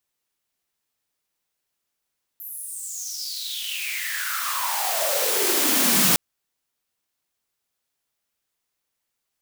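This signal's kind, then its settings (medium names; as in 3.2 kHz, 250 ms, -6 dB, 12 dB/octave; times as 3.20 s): swept filtered noise white, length 3.76 s highpass, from 13 kHz, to 170 Hz, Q 8, exponential, gain ramp +25 dB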